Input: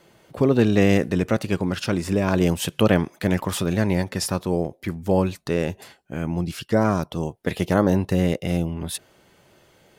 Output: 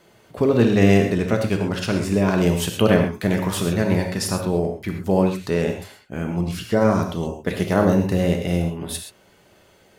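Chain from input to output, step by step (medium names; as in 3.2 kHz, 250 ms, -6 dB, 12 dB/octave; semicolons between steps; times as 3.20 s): gated-style reverb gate 150 ms flat, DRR 3 dB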